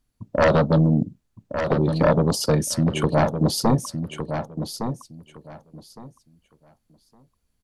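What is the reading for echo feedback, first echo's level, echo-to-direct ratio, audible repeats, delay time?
19%, -8.0 dB, -8.0 dB, 2, 1.162 s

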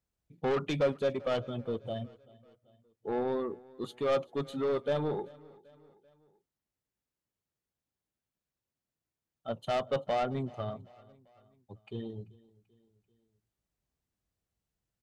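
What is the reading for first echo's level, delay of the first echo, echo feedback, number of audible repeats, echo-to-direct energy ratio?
-23.0 dB, 0.388 s, 51%, 3, -22.0 dB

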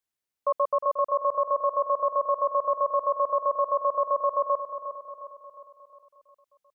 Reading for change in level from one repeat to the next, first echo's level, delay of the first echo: -5.5 dB, -10.0 dB, 0.358 s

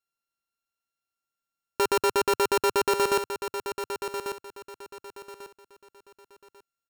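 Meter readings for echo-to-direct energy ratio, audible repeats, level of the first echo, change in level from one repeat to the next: -8.5 dB, 3, -9.0 dB, -11.0 dB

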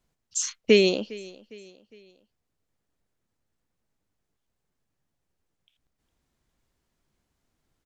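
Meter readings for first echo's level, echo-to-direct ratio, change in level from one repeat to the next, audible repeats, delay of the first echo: -21.0 dB, -20.0 dB, -7.0 dB, 3, 0.407 s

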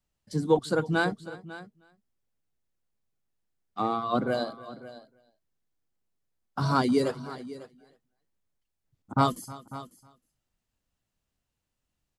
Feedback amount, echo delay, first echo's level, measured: no steady repeat, 0.312 s, -20.0 dB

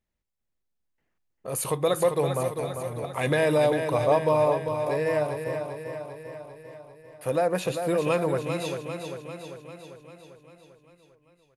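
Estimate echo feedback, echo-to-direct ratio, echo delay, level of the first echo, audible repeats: 60%, -5.0 dB, 0.396 s, -7.0 dB, 7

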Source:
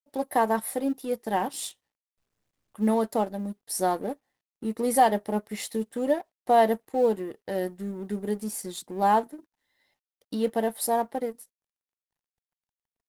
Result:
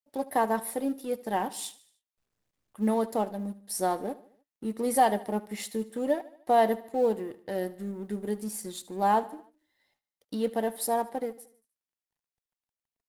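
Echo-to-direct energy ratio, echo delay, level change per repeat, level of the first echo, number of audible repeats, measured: -17.0 dB, 75 ms, -6.0 dB, -18.0 dB, 3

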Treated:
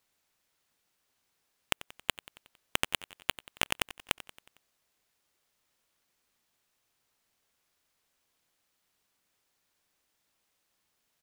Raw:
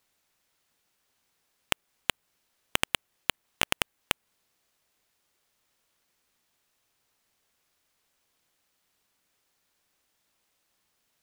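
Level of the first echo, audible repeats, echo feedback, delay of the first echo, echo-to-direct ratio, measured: -17.0 dB, 4, 57%, 91 ms, -15.5 dB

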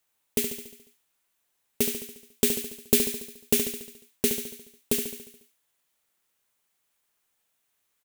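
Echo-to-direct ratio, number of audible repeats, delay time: -6.5 dB, 6, 71 ms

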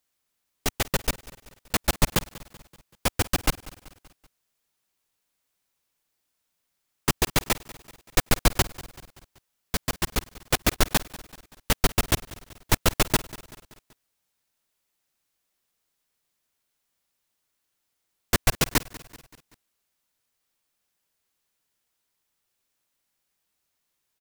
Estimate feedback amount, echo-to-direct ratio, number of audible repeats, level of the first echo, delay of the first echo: 52%, -17.5 dB, 3, -19.0 dB, 0.191 s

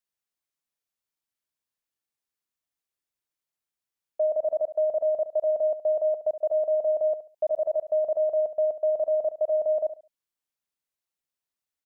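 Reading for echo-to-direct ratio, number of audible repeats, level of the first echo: -12.0 dB, 2, -12.5 dB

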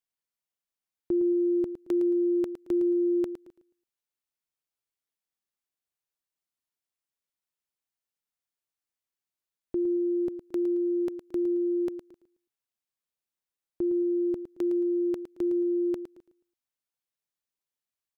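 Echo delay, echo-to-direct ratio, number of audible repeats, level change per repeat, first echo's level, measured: 0.111 s, -9.5 dB, 3, -12.0 dB, -10.0 dB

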